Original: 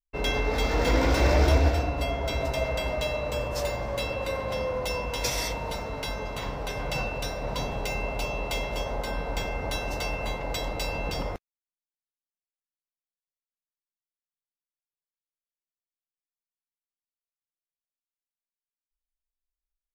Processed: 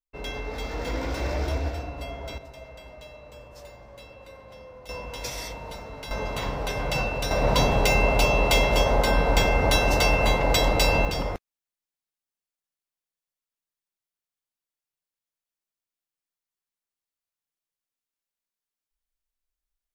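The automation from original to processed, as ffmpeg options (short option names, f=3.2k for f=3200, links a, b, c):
-af "asetnsamples=n=441:p=0,asendcmd='2.38 volume volume -16dB;4.89 volume volume -5.5dB;6.11 volume volume 3.5dB;7.31 volume volume 10dB;11.05 volume volume 3dB',volume=-7dB"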